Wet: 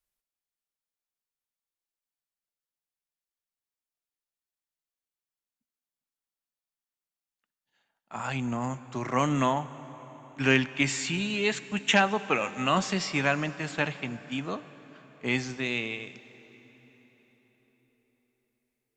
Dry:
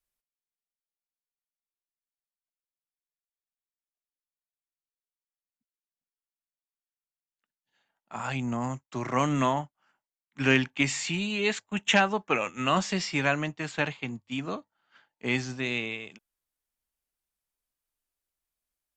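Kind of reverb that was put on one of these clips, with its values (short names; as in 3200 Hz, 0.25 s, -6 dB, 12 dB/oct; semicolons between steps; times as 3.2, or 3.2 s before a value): plate-style reverb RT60 4.9 s, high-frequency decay 0.75×, DRR 14.5 dB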